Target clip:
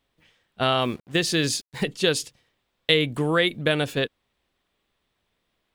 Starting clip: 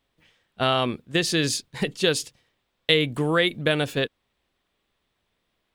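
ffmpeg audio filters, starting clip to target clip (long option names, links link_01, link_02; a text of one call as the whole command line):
ffmpeg -i in.wav -filter_complex "[0:a]asettb=1/sr,asplit=3[link_01][link_02][link_03];[link_01]atrim=end=0.814[link_04];[link_02]atrim=start=0.81:end=1.85,asetpts=PTS-STARTPTS,afade=type=in:duration=0.004:curve=qsin,afade=type=out:start_time=1.036:duration=0.004:curve=qsin,acrusher=bits=7:mix=0:aa=0.5[link_05];[link_03]atrim=start=1.846[link_06];[link_04][link_05]acrossfade=duration=0.004:curve1=hsin:curve2=qsin[link_07];[link_07][link_06]acrossfade=duration=0.004:curve1=qsin:curve2=hsin" out.wav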